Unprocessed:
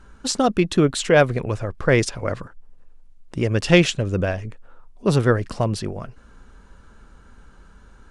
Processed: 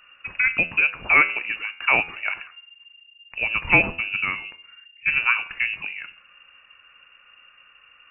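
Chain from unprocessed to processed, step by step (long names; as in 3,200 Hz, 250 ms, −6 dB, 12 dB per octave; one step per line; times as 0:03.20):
low-shelf EQ 200 Hz −10 dB
hum removal 82.16 Hz, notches 38
voice inversion scrambler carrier 2,800 Hz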